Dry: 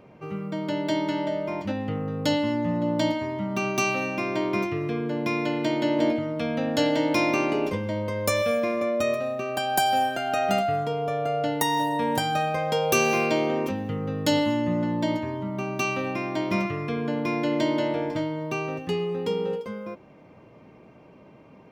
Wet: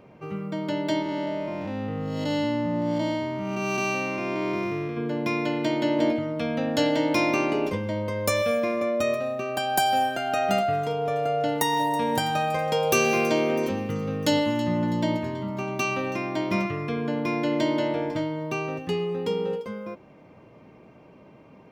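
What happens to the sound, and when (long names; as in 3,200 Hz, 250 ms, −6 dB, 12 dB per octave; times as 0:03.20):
0:01.02–0:04.97: spectrum smeared in time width 255 ms
0:10.40–0:16.17: echo with a time of its own for lows and highs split 1,400 Hz, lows 120 ms, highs 326 ms, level −15 dB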